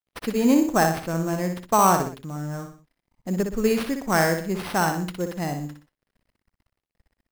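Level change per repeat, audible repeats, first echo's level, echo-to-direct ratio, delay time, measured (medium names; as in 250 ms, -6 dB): -8.0 dB, 3, -6.5 dB, -6.0 dB, 61 ms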